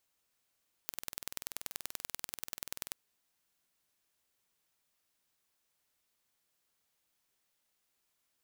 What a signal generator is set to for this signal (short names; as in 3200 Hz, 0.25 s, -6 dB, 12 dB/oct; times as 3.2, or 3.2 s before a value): pulse train 20.7/s, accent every 2, -9.5 dBFS 2.05 s